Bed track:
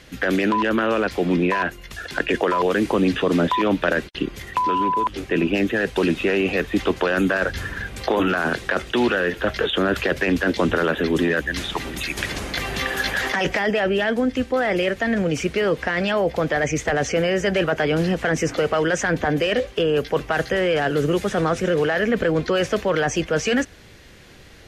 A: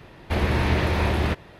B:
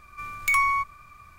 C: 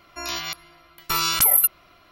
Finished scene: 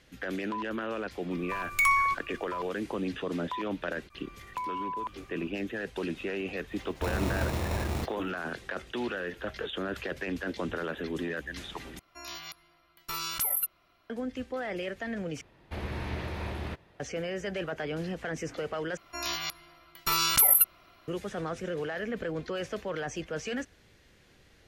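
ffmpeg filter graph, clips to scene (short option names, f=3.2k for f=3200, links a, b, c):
-filter_complex "[2:a]asplit=2[a][b];[1:a]asplit=2[c][d];[3:a]asplit=2[e][f];[0:a]volume=-14dB[g];[b]acompressor=threshold=-44dB:ratio=6:attack=3.2:release=140:knee=1:detection=peak[h];[c]acrusher=samples=28:mix=1:aa=0.000001[i];[g]asplit=4[j][k][l][m];[j]atrim=end=11.994[n];[e]atrim=end=2.11,asetpts=PTS-STARTPTS,volume=-12.5dB[o];[k]atrim=start=14.096:end=15.414[p];[d]atrim=end=1.59,asetpts=PTS-STARTPTS,volume=-13.5dB[q];[l]atrim=start=16.996:end=18.974[r];[f]atrim=end=2.11,asetpts=PTS-STARTPTS,volume=-4dB[s];[m]atrim=start=21.076[t];[a]atrim=end=1.38,asetpts=PTS-STARTPTS,volume=-2dB,afade=t=in:d=0.004:c=hsin,afade=t=out:st=1.376:d=0.004:c=hsin,adelay=1310[u];[h]atrim=end=1.38,asetpts=PTS-STARTPTS,volume=-7.5dB,afade=t=in:d=0.004:c=hsin,afade=t=out:st=1.376:d=0.004:c=hsin,adelay=4100[v];[i]atrim=end=1.59,asetpts=PTS-STARTPTS,volume=-9dB,afade=t=in:d=0.004:c=hsin,afade=t=out:st=1.586:d=0.004:c=hsin,adelay=6710[w];[n][o]acrossfade=d=0.004:c1=hsin:c2=hsin[x];[x][p]acrossfade=d=0.004:c1=hsin:c2=hsin[y];[y][q]acrossfade=d=0.004:c1=hsin:c2=hsin[z];[z][r]acrossfade=d=0.004:c1=hsin:c2=hsin[aa];[aa][s]acrossfade=d=0.004:c1=hsin:c2=hsin[ab];[ab][t]acrossfade=d=0.004:c1=hsin:c2=hsin[ac];[ac][u][v][w]amix=inputs=4:normalize=0"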